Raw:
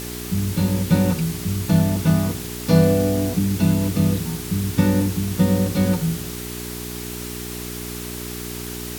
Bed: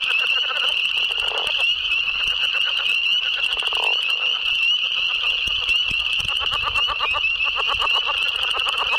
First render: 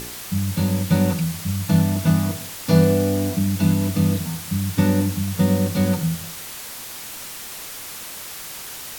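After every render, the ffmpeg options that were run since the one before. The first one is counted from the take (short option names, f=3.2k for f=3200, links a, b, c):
-af "bandreject=f=60:t=h:w=4,bandreject=f=120:t=h:w=4,bandreject=f=180:t=h:w=4,bandreject=f=240:t=h:w=4,bandreject=f=300:t=h:w=4,bandreject=f=360:t=h:w=4,bandreject=f=420:t=h:w=4,bandreject=f=480:t=h:w=4,bandreject=f=540:t=h:w=4,bandreject=f=600:t=h:w=4,bandreject=f=660:t=h:w=4"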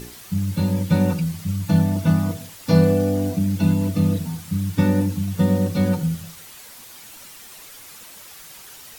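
-af "afftdn=nr=9:nf=-35"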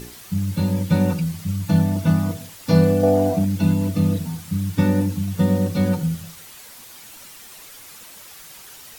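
-filter_complex "[0:a]asettb=1/sr,asplit=3[a][b][c];[a]atrim=end=3.034[d];[b]atrim=start=3.03:end=3.45,asetpts=PTS-STARTPTS,afade=t=in:d=0.004:c=qsin,afade=t=out:st=0.416:d=0.004:c=qsin,equalizer=f=700:w=1.2:g=13[e];[c]atrim=start=3.446[f];[d][e]acrossfade=d=0.004:c1=hsin:c2=qsin[g];[g][f]acrossfade=d=0.004:c1=qsin:c2=hsin"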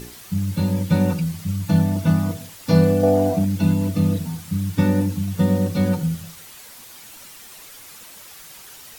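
-af anull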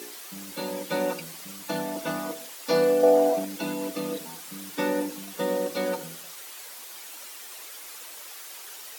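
-af "highpass=f=330:w=0.5412,highpass=f=330:w=1.3066"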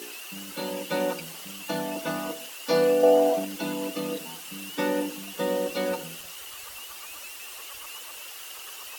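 -filter_complex "[1:a]volume=-25.5dB[a];[0:a][a]amix=inputs=2:normalize=0"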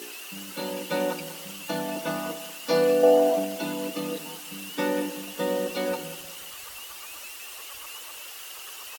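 -af "aecho=1:1:190|380|570:0.188|0.0697|0.0258"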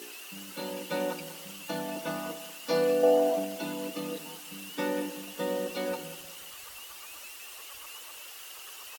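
-af "volume=-4.5dB"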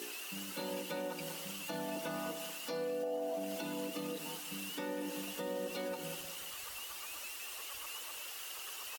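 -af "acompressor=threshold=-34dB:ratio=4,alimiter=level_in=6dB:limit=-24dB:level=0:latency=1:release=99,volume=-6dB"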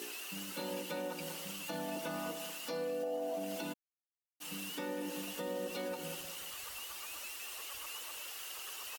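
-filter_complex "[0:a]asplit=3[a][b][c];[a]afade=t=out:st=3.72:d=0.02[d];[b]acrusher=bits=3:mix=0:aa=0.5,afade=t=in:st=3.72:d=0.02,afade=t=out:st=4.4:d=0.02[e];[c]afade=t=in:st=4.4:d=0.02[f];[d][e][f]amix=inputs=3:normalize=0"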